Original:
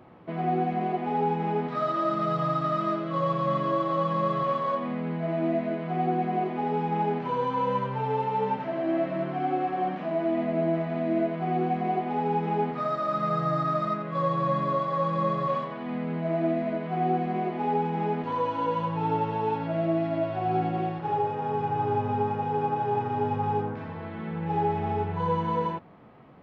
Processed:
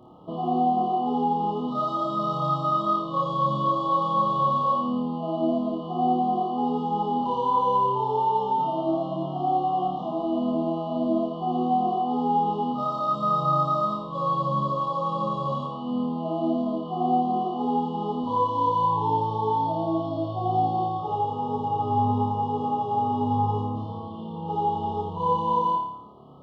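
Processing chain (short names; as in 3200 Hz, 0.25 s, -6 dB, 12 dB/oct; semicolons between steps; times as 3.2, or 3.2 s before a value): flutter echo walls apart 4.8 m, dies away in 0.72 s; FFT band-reject 1300–2800 Hz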